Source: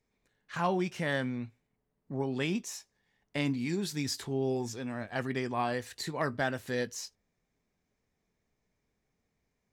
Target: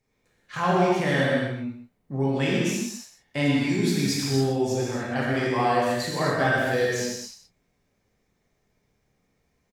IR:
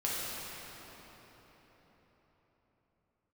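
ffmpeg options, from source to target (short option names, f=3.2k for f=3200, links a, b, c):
-filter_complex "[0:a]aecho=1:1:125:0.299[a];[1:a]atrim=start_sample=2205,afade=t=out:st=0.35:d=0.01,atrim=end_sample=15876[b];[a][b]afir=irnorm=-1:irlink=0,volume=3.5dB"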